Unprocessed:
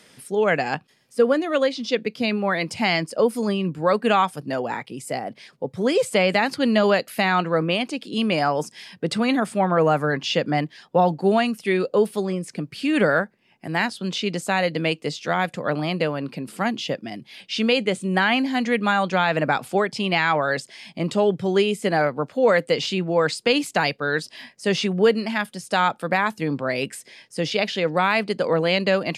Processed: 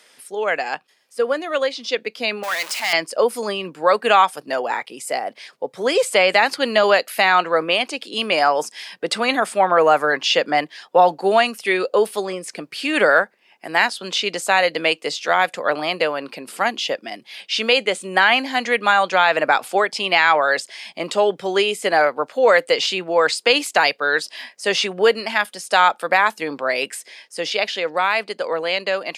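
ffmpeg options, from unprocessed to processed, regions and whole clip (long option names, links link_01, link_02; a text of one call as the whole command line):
ffmpeg -i in.wav -filter_complex "[0:a]asettb=1/sr,asplit=3[link_01][link_02][link_03];[link_01]atrim=end=2.434[link_04];[link_02]atrim=start=2.43:end=2.93,asetpts=PTS-STARTPTS,afade=type=in:duration=0.004:curve=qsin,afade=type=out:start_time=0.496:duration=0.004:curve=qsin,aeval=exprs='val(0)+0.5*0.0631*sgn(val(0))':channel_layout=same,highpass=frequency=1300:poles=1,aeval=exprs='(tanh(7.94*val(0)+0.6)-tanh(0.6))/7.94':channel_layout=same[link_05];[link_03]atrim=start=2.926[link_06];[link_04][link_05]acrossfade=duration=0.004:curve1=hsin:curve2=qsin[link_07];[link_07][link_06]acrossfade=duration=0.004:curve1=qsin:curve2=hsin,highpass=520,dynaudnorm=framelen=250:gausssize=17:maxgain=7.5dB,volume=1dB" out.wav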